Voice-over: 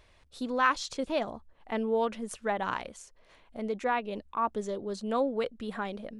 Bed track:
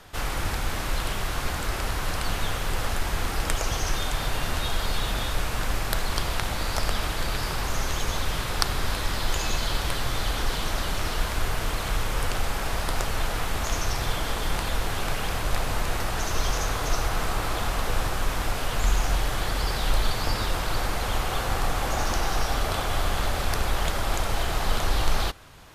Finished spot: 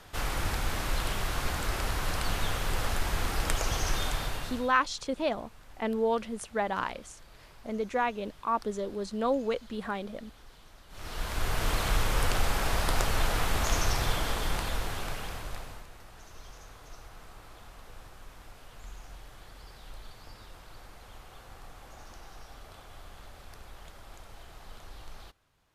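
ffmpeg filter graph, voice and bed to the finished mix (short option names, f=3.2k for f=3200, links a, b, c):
-filter_complex "[0:a]adelay=4100,volume=0.5dB[a];[1:a]volume=23.5dB,afade=t=out:st=4.06:d=0.68:silence=0.0630957,afade=t=in:st=10.89:d=0.84:silence=0.0473151,afade=t=out:st=13.81:d=2.07:silence=0.0749894[b];[a][b]amix=inputs=2:normalize=0"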